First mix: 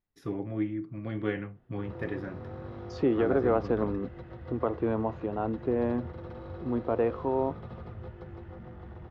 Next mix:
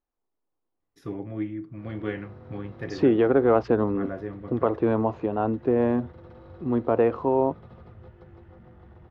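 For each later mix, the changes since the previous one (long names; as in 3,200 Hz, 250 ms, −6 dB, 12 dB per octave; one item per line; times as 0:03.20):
first voice: entry +0.80 s
second voice +6.0 dB
background −5.0 dB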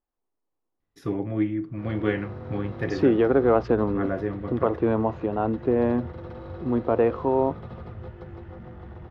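first voice +6.0 dB
background +8.5 dB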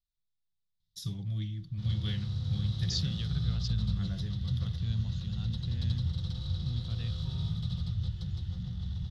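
second voice: add flat-topped bell 560 Hz −12.5 dB 2.5 octaves
background +7.0 dB
master: add drawn EQ curve 180 Hz 0 dB, 280 Hz −27 dB, 560 Hz −27 dB, 2,400 Hz −15 dB, 3,600 Hz +13 dB, 11,000 Hz +10 dB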